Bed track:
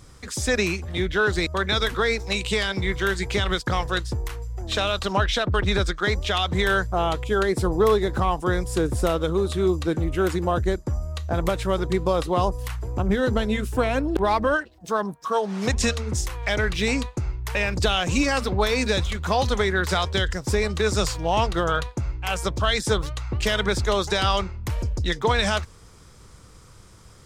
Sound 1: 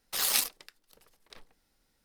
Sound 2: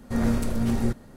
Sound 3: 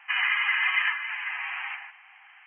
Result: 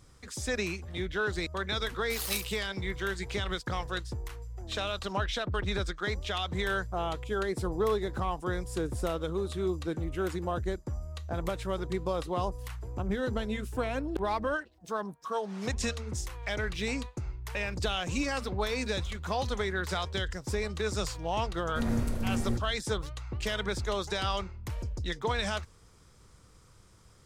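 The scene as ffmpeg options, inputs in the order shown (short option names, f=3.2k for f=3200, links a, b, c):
-filter_complex "[0:a]volume=-9.5dB[a];[1:a]aecho=1:1:152:0.133[b];[2:a]equalizer=f=87:w=1.5:g=3[c];[b]atrim=end=2.04,asetpts=PTS-STARTPTS,volume=-8dB,afade=t=in:d=0.004:c=hsin,afade=t=out:st=2.036:d=0.004:c=hsin,adelay=1970[d];[c]atrim=end=1.16,asetpts=PTS-STARTPTS,volume=-7dB,afade=t=in:d=0.004:c=hsin,afade=t=out:st=1.156:d=0.004:c=hsin,adelay=21650[e];[a][d][e]amix=inputs=3:normalize=0"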